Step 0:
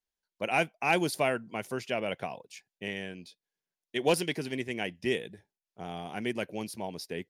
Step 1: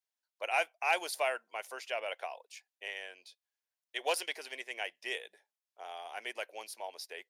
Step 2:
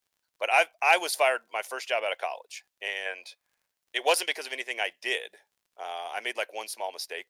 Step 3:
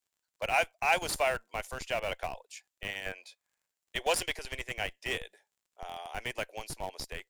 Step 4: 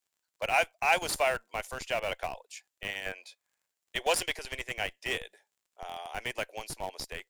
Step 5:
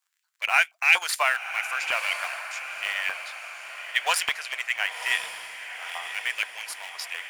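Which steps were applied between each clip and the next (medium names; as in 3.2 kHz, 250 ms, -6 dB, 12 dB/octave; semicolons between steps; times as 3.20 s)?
high-pass 570 Hz 24 dB/octave; trim -2.5 dB
time-frequency box 3.06–3.66 s, 470–2600 Hz +8 dB; crackle 49 per s -64 dBFS; trim +8.5 dB
peaking EQ 7.4 kHz +8 dB 0.26 oct; in parallel at -4 dB: Schmitt trigger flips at -26.5 dBFS; on the sum: trim -6.5 dB
bass shelf 160 Hz -4.5 dB; trim +1.5 dB
LFO high-pass saw up 4.2 Hz 990–2400 Hz; echo that smears into a reverb 1024 ms, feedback 53%, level -9.5 dB; trim +4 dB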